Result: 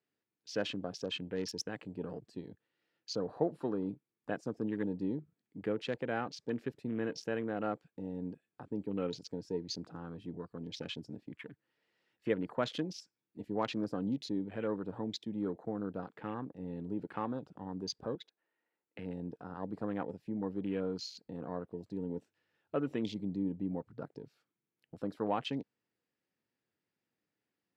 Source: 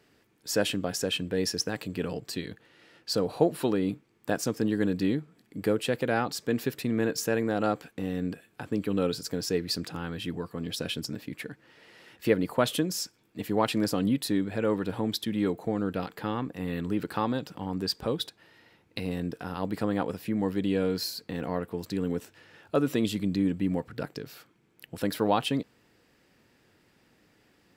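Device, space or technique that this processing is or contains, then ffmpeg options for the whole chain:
over-cleaned archive recording: -filter_complex "[0:a]highpass=100,lowpass=7.6k,afwtdn=0.0112,asettb=1/sr,asplit=3[a][b][c];[a]atrim=end=18.154[d];[b]atrim=start=18.15:end=18.99,asetpts=PTS-STARTPTS,afade=t=in:d=0.004:c=qsin,afade=t=out:st=0.836:d=0.004:c=qsin,acrossover=split=250 2600:gain=0.126 1 0.158[e][f][g];[e][f][g]amix=inputs=3:normalize=0[h];[c]atrim=start=18.986[i];[d][h]acrossfade=d=0.004:c1=hsin:c2=qsin[j];[j][i]acrossfade=d=0.004:c1=qsin:c2=hsin,volume=-8.5dB"

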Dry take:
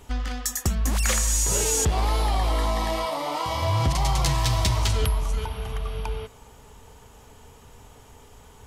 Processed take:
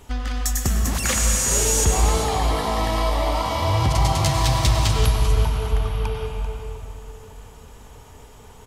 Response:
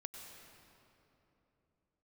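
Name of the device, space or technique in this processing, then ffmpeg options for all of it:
cave: -filter_complex "[0:a]aecho=1:1:391:0.251[a];[1:a]atrim=start_sample=2205[b];[a][b]afir=irnorm=-1:irlink=0,volume=7dB"

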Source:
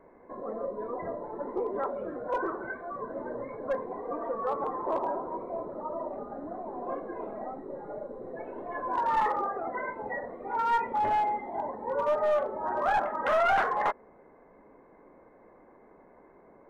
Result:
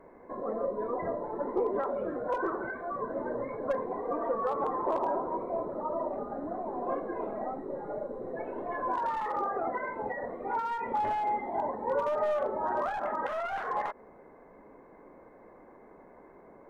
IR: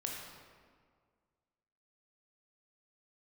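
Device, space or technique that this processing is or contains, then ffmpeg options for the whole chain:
de-esser from a sidechain: -filter_complex "[0:a]asplit=2[a][b];[b]highpass=4.7k,apad=whole_len=736420[c];[a][c]sidechaincompress=threshold=-56dB:ratio=10:attack=3.2:release=92,volume=2.5dB"

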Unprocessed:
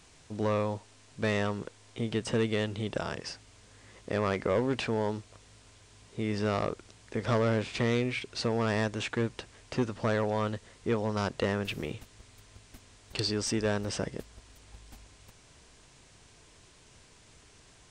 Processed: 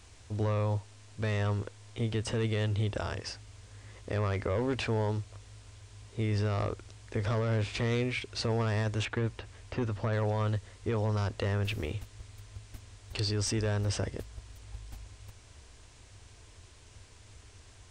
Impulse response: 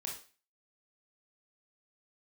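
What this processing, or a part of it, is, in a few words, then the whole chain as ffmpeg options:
car stereo with a boomy subwoofer: -filter_complex "[0:a]lowshelf=f=120:t=q:w=3:g=6,alimiter=limit=-22.5dB:level=0:latency=1:release=17,asettb=1/sr,asplit=3[a][b][c];[a]atrim=end=9.054[d];[b]atrim=start=9.05:end=10.13,asetpts=PTS-STARTPTS,afade=t=in:d=0.004:c=qsin,afade=t=out:st=1.076:d=0.004:c=qsin,acrossover=split=3500[e][f];[f]acompressor=threshold=-58dB:ratio=4:attack=1:release=60[g];[e][g]amix=inputs=2:normalize=0[h];[c]atrim=start=10.126[i];[d][h]acrossfade=d=0.004:c1=hsin:c2=qsin[j];[j][i]acrossfade=d=0.004:c1=qsin:c2=hsin"

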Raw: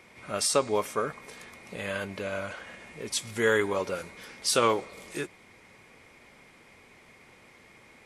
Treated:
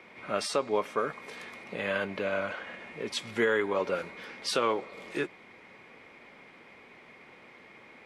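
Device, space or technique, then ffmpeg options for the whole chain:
DJ mixer with the lows and highs turned down: -filter_complex "[0:a]acrossover=split=160 4100:gain=0.251 1 0.141[a][b][c];[a][b][c]amix=inputs=3:normalize=0,alimiter=limit=-19dB:level=0:latency=1:release=391,asettb=1/sr,asplit=3[d][e][f];[d]atrim=end=0.984[g];[e]atrim=start=0.98:end=1.64,asetpts=PTS-STARTPTS,afade=t=in:d=0.004:c=qsin,afade=t=out:st=0.656:d=0.004:c=qsin,highshelf=f=4.5k:g=8[h];[f]atrim=start=1.636[i];[g][h]acrossfade=d=0.004:c1=hsin:c2=qsin[j];[j][i]acrossfade=d=0.004:c1=qsin:c2=hsin,volume=3dB"

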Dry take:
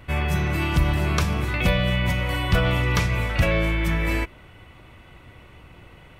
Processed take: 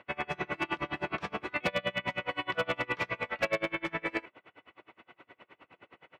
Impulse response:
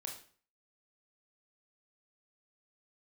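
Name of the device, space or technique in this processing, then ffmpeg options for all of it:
helicopter radio: -af "highpass=360,lowpass=2.8k,aeval=exprs='val(0)*pow(10,-31*(0.5-0.5*cos(2*PI*9.6*n/s))/20)':c=same,asoftclip=type=hard:threshold=-23dB,volume=1.5dB"

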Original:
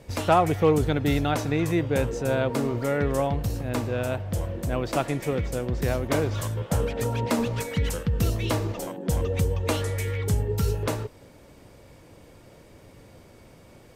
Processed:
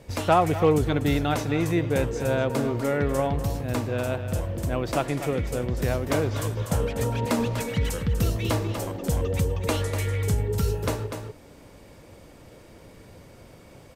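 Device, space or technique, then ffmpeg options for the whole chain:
ducked delay: -filter_complex "[0:a]asplit=3[a][b][c];[b]adelay=245,volume=-2dB[d];[c]apad=whole_len=626289[e];[d][e]sidechaincompress=threshold=-30dB:ratio=5:attack=16:release=829[f];[a][f]amix=inputs=2:normalize=0"

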